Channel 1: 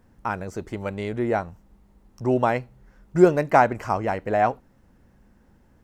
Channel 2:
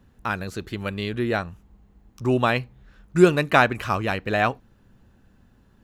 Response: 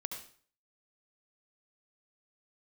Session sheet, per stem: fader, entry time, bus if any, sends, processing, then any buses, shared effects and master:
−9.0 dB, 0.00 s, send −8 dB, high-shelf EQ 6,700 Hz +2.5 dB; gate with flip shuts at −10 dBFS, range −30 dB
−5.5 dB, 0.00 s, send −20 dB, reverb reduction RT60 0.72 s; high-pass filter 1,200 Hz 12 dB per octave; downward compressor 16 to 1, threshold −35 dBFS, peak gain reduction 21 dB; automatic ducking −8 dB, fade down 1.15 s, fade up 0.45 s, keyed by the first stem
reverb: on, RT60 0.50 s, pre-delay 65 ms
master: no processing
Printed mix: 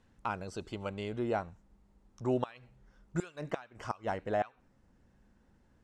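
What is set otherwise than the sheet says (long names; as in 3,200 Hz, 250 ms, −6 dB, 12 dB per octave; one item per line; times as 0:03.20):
stem 1: send off
master: extra low-pass filter 9,200 Hz 24 dB per octave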